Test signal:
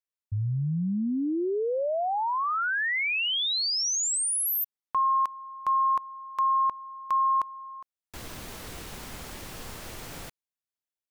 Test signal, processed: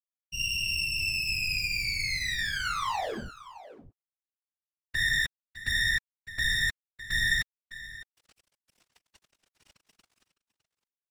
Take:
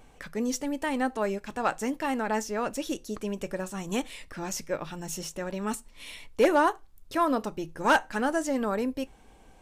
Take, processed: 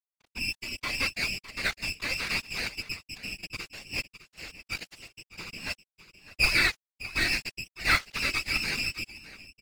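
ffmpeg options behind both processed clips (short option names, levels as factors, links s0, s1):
-filter_complex "[0:a]lowpass=f=2500:t=q:w=0.5098,lowpass=f=2500:t=q:w=0.6013,lowpass=f=2500:t=q:w=0.9,lowpass=f=2500:t=q:w=2.563,afreqshift=-2900,agate=range=0.0224:threshold=0.00891:ratio=3:release=55:detection=peak,lowshelf=f=97:g=9,acrossover=split=1600[s0][s1];[s1]aeval=exprs='max(val(0),0)':c=same[s2];[s0][s2]amix=inputs=2:normalize=0,bandreject=f=186.9:t=h:w=4,bandreject=f=373.8:t=h:w=4,bandreject=f=560.7:t=h:w=4,bandreject=f=747.6:t=h:w=4,bandreject=f=934.5:t=h:w=4,bandreject=f=1121.4:t=h:w=4,bandreject=f=1308.3:t=h:w=4,bandreject=f=1495.2:t=h:w=4,bandreject=f=1682.1:t=h:w=4,bandreject=f=1869:t=h:w=4,bandreject=f=2055.9:t=h:w=4,bandreject=f=2242.8:t=h:w=4,bandreject=f=2429.7:t=h:w=4,bandreject=f=2616.6:t=h:w=4,bandreject=f=2803.5:t=h:w=4,bandreject=f=2990.4:t=h:w=4,bandreject=f=3177.3:t=h:w=4,bandreject=f=3364.2:t=h:w=4,bandreject=f=3551.1:t=h:w=4,bandreject=f=3738:t=h:w=4,bandreject=f=3924.9:t=h:w=4,bandreject=f=4111.8:t=h:w=4,bandreject=f=4298.7:t=h:w=4,bandreject=f=4485.6:t=h:w=4,bandreject=f=4672.5:t=h:w=4,bandreject=f=4859.4:t=h:w=4,bandreject=f=5046.3:t=h:w=4,bandreject=f=5233.2:t=h:w=4,bandreject=f=5420.1:t=h:w=4,bandreject=f=5607:t=h:w=4,bandreject=f=5793.9:t=h:w=4,bandreject=f=5980.8:t=h:w=4,bandreject=f=6167.7:t=h:w=4,aeval=exprs='sgn(val(0))*max(abs(val(0))-0.015,0)':c=same,aecho=1:1:608:0.178,afftfilt=real='hypot(re,im)*cos(2*PI*random(0))':imag='hypot(re,im)*sin(2*PI*random(1))':win_size=512:overlap=0.75,adynamicequalizer=threshold=0.00398:dfrequency=2100:dqfactor=0.7:tfrequency=2100:tqfactor=0.7:attack=5:release=100:ratio=0.375:range=3.5:mode=boostabove:tftype=highshelf,volume=1.88"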